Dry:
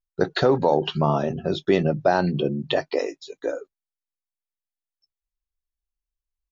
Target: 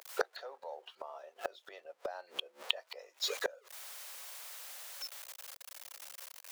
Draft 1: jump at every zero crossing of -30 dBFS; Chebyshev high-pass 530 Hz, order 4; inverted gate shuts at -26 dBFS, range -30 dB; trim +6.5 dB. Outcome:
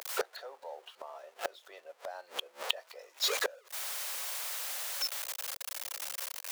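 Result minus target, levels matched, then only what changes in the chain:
jump at every zero crossing: distortion +9 dB
change: jump at every zero crossing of -40 dBFS

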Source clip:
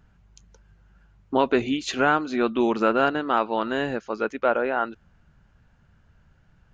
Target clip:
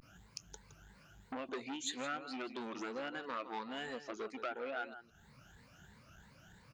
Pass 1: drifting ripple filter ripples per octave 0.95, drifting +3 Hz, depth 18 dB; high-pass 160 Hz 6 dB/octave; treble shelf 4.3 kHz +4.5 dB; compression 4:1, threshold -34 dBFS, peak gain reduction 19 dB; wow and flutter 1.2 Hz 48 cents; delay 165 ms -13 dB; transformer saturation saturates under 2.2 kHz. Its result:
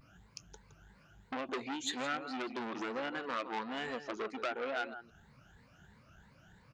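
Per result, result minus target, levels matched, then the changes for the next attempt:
compression: peak gain reduction -5.5 dB; 8 kHz band -4.5 dB
change: compression 4:1, threshold -41 dBFS, peak gain reduction 24.5 dB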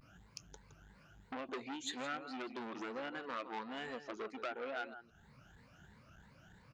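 8 kHz band -4.0 dB
change: treble shelf 4.3 kHz +13.5 dB

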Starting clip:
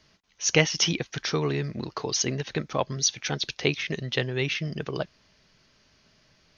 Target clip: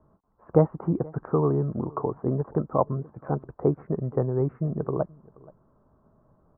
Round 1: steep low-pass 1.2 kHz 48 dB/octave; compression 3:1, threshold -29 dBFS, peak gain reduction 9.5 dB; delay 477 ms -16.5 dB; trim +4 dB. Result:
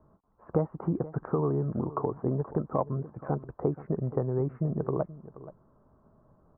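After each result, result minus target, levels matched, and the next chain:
compression: peak gain reduction +9.5 dB; echo-to-direct +7 dB
steep low-pass 1.2 kHz 48 dB/octave; delay 477 ms -16.5 dB; trim +4 dB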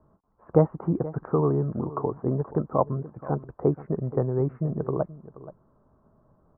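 echo-to-direct +7 dB
steep low-pass 1.2 kHz 48 dB/octave; delay 477 ms -23.5 dB; trim +4 dB

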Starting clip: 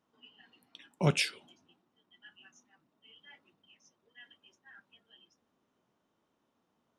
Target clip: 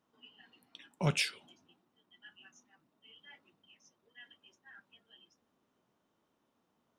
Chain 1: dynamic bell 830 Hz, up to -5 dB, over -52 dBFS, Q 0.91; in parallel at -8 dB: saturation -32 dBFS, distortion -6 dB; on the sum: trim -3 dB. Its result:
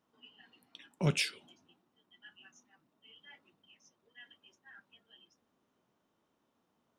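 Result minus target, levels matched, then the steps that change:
1 kHz band -3.5 dB
change: dynamic bell 340 Hz, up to -5 dB, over -52 dBFS, Q 0.91

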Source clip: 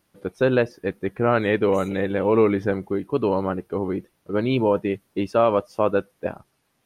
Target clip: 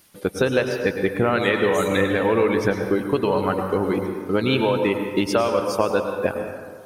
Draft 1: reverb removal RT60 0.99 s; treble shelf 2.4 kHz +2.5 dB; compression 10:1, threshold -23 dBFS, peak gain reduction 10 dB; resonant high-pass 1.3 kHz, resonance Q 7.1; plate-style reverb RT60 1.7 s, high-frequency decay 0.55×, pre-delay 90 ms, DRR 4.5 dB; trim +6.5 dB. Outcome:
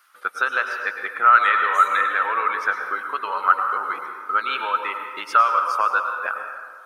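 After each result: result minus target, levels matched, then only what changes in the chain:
1 kHz band +8.0 dB; 4 kHz band -5.5 dB
remove: resonant high-pass 1.3 kHz, resonance Q 7.1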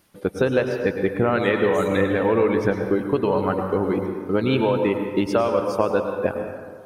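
4 kHz band -5.5 dB
change: treble shelf 2.4 kHz +12 dB

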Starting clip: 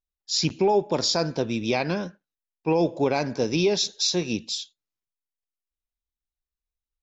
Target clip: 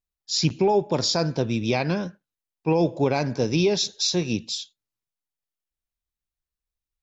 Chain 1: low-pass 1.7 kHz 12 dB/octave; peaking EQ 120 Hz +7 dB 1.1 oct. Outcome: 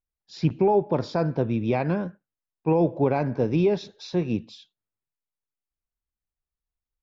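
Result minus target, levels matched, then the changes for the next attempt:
2 kHz band -4.5 dB
remove: low-pass 1.7 kHz 12 dB/octave

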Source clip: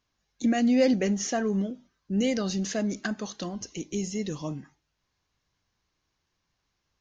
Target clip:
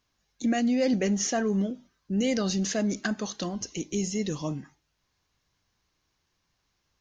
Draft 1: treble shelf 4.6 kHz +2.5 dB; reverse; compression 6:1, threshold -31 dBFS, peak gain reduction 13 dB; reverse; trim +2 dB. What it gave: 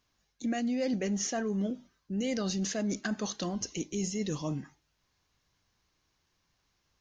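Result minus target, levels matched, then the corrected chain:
compression: peak gain reduction +6 dB
treble shelf 4.6 kHz +2.5 dB; reverse; compression 6:1, threshold -23.5 dBFS, peak gain reduction 6.5 dB; reverse; trim +2 dB

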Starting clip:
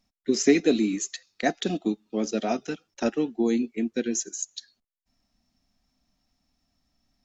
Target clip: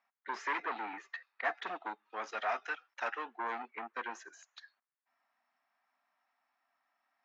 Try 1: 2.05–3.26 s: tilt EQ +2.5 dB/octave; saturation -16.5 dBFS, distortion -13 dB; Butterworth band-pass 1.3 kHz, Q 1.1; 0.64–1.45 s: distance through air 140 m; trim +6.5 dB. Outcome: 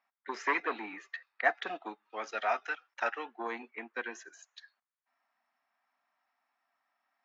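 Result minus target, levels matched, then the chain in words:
saturation: distortion -8 dB
2.05–3.26 s: tilt EQ +2.5 dB/octave; saturation -28 dBFS, distortion -5 dB; Butterworth band-pass 1.3 kHz, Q 1.1; 0.64–1.45 s: distance through air 140 m; trim +6.5 dB

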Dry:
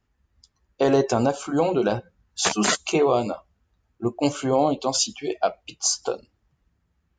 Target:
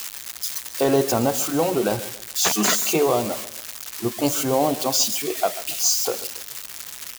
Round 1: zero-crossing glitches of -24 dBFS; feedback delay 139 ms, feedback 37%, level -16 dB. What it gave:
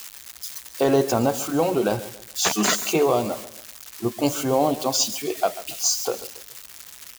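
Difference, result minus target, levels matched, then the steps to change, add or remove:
zero-crossing glitches: distortion -6 dB
change: zero-crossing glitches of -17.5 dBFS

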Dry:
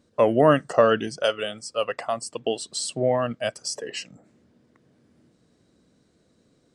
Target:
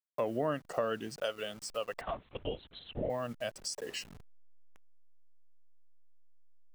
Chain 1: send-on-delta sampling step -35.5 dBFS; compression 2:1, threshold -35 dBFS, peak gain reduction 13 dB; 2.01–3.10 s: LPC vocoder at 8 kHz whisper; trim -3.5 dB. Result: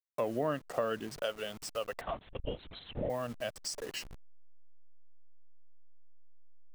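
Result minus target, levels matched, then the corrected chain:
send-on-delta sampling: distortion +6 dB
send-on-delta sampling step -41.5 dBFS; compression 2:1, threshold -35 dBFS, peak gain reduction 13 dB; 2.01–3.10 s: LPC vocoder at 8 kHz whisper; trim -3.5 dB

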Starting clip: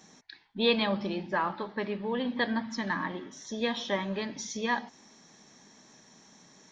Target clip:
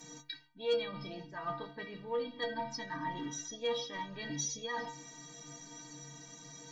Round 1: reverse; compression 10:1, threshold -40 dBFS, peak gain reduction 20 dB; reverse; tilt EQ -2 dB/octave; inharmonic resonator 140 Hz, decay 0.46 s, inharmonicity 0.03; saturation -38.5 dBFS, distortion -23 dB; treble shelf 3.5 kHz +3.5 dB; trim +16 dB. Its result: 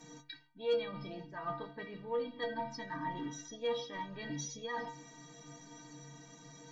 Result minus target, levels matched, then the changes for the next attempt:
8 kHz band -6.5 dB
change: treble shelf 3.5 kHz +13 dB

